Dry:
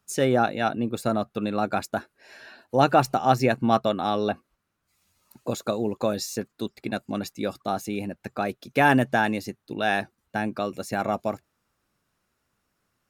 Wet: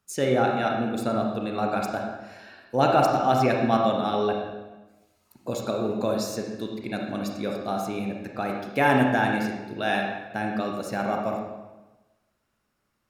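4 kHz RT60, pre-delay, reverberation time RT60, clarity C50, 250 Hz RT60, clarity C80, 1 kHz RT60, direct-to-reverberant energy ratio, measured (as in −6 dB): 0.90 s, 30 ms, 1.1 s, 2.5 dB, 1.2 s, 4.5 dB, 1.1 s, 0.5 dB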